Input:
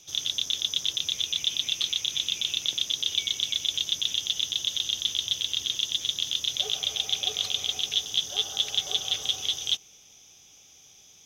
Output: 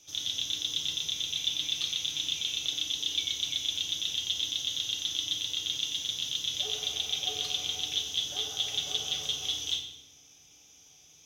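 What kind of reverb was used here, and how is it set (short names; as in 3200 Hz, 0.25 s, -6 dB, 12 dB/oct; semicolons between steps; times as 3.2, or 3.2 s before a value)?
FDN reverb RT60 0.84 s, low-frequency decay 1.45×, high-frequency decay 0.85×, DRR 0 dB; gain -6 dB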